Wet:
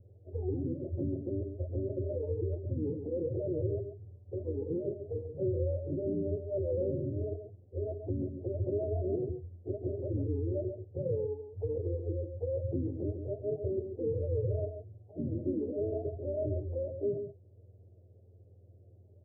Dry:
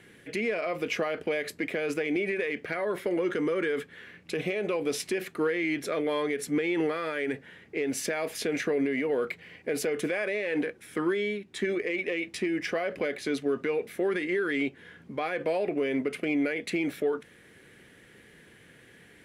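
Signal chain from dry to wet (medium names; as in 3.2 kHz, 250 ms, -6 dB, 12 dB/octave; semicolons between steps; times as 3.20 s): spectrum inverted on a logarithmic axis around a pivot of 420 Hz; steep low-pass 620 Hz 48 dB/octave; on a send: delay 138 ms -8 dB; on the sum: trim -4 dB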